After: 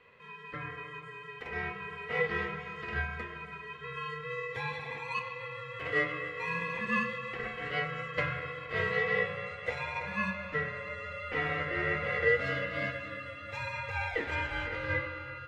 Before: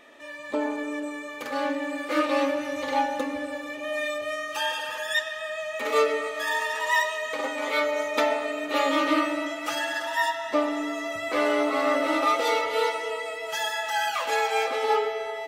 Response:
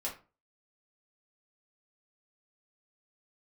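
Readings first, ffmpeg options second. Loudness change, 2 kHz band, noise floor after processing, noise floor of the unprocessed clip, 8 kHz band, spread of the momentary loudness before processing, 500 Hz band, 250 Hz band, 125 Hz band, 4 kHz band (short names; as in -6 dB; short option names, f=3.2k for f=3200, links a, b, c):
-7.5 dB, -3.5 dB, -46 dBFS, -37 dBFS, under -20 dB, 8 LU, -10.0 dB, -12.5 dB, n/a, -13.0 dB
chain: -filter_complex "[0:a]bandpass=f=1.3k:t=q:w=2.8:csg=0,aeval=exprs='val(0)*sin(2*PI*750*n/s)':c=same,asplit=2[a][b];[1:a]atrim=start_sample=2205[c];[b][c]afir=irnorm=-1:irlink=0,volume=-7.5dB[d];[a][d]amix=inputs=2:normalize=0"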